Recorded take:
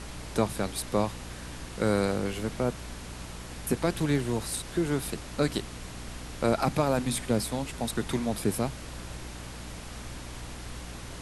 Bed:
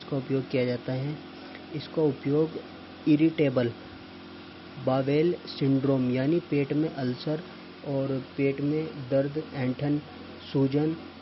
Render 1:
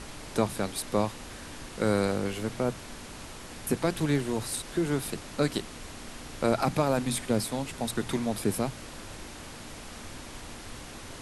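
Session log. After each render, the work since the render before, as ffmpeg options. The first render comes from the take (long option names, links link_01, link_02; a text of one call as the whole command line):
ffmpeg -i in.wav -af "bandreject=frequency=60:width_type=h:width=6,bandreject=frequency=120:width_type=h:width=6,bandreject=frequency=180:width_type=h:width=6" out.wav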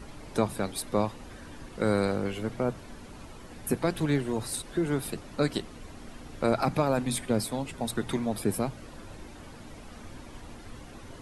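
ffmpeg -i in.wav -af "afftdn=noise_reduction=10:noise_floor=-44" out.wav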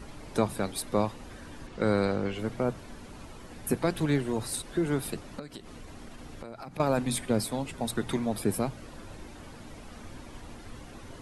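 ffmpeg -i in.wav -filter_complex "[0:a]asettb=1/sr,asplit=3[link_01][link_02][link_03];[link_01]atrim=end=1.674[link_04];[link_02]atrim=start=1.67:end=2.39,asetpts=PTS-STARTPTS,afade=type=in:duration=0.004:curve=qsin,afade=type=out:start_time=0.716:duration=0.004:curve=qsin,lowpass=6400[link_05];[link_03]atrim=start=2.386[link_06];[link_04][link_05]acrossfade=duration=0.004:curve1=hsin:curve2=qsin[link_07];[link_07][link_06]acrossfade=duration=0.004:curve1=qsin:curve2=hsin,asettb=1/sr,asplit=3[link_08][link_09][link_10];[link_08]atrim=end=5.394[link_11];[link_09]atrim=start=5.39:end=6.8,asetpts=PTS-STARTPTS,afade=type=in:duration=0.004:curve=qsin,afade=type=out:start_time=1.406:duration=0.004:curve=qsin,acompressor=threshold=-39dB:ratio=6:attack=3.2:release=140:knee=1:detection=peak[link_12];[link_10]atrim=start=6.796[link_13];[link_11][link_12]acrossfade=duration=0.004:curve1=hsin:curve2=qsin[link_14];[link_14][link_13]acrossfade=duration=0.004:curve1=qsin:curve2=hsin" out.wav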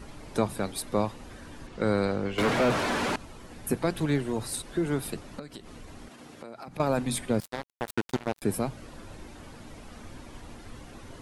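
ffmpeg -i in.wav -filter_complex "[0:a]asettb=1/sr,asplit=3[link_01][link_02][link_03];[link_01]atrim=end=2.384[link_04];[link_02]atrim=start=2.38:end=3.16,asetpts=PTS-STARTPTS,afade=type=in:duration=0.004:curve=qsin,afade=type=out:start_time=0.776:duration=0.004:curve=qsin,asplit=2[link_05][link_06];[link_06]highpass=frequency=720:poles=1,volume=35dB,asoftclip=type=tanh:threshold=-16dB[link_07];[link_05][link_07]amix=inputs=2:normalize=0,lowpass=frequency=2400:poles=1,volume=-6dB[link_08];[link_03]atrim=start=3.156[link_09];[link_04][link_08]acrossfade=duration=0.004:curve1=hsin:curve2=qsin[link_10];[link_10][link_09]acrossfade=duration=0.004:curve1=qsin:curve2=hsin,asettb=1/sr,asplit=3[link_11][link_12][link_13];[link_11]atrim=end=6.084[link_14];[link_12]atrim=start=6.08:end=6.68,asetpts=PTS-STARTPTS,afade=type=in:duration=0.004:curve=qsin,afade=type=out:start_time=0.596:duration=0.004:curve=qsin,highpass=170[link_15];[link_13]atrim=start=6.676[link_16];[link_14][link_15]acrossfade=duration=0.004:curve1=hsin:curve2=qsin[link_17];[link_17][link_16]acrossfade=duration=0.004:curve1=qsin:curve2=hsin,asettb=1/sr,asplit=3[link_18][link_19][link_20];[link_18]atrim=end=7.404[link_21];[link_19]atrim=start=7.4:end=8.42,asetpts=PTS-STARTPTS,afade=type=in:duration=0.004:curve=qsin,afade=type=out:start_time=1.016:duration=0.004:curve=qsin,acrusher=bits=3:mix=0:aa=0.5[link_22];[link_20]atrim=start=8.416[link_23];[link_21][link_22]acrossfade=duration=0.004:curve1=hsin:curve2=qsin[link_24];[link_24][link_23]acrossfade=duration=0.004:curve1=qsin:curve2=hsin" out.wav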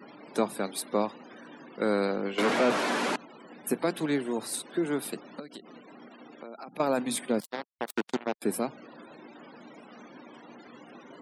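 ffmpeg -i in.wav -af "highpass=frequency=200:width=0.5412,highpass=frequency=200:width=1.3066,afftfilt=real='re*gte(hypot(re,im),0.00316)':imag='im*gte(hypot(re,im),0.00316)':win_size=1024:overlap=0.75" out.wav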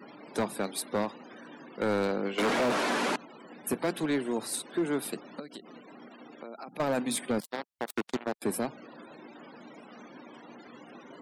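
ffmpeg -i in.wav -af "asoftclip=type=hard:threshold=-22.5dB" out.wav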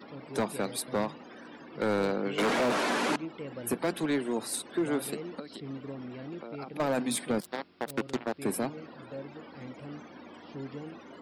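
ffmpeg -i in.wav -i bed.wav -filter_complex "[1:a]volume=-16.5dB[link_01];[0:a][link_01]amix=inputs=2:normalize=0" out.wav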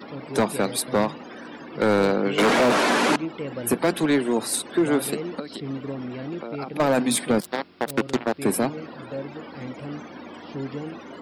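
ffmpeg -i in.wav -af "volume=8.5dB" out.wav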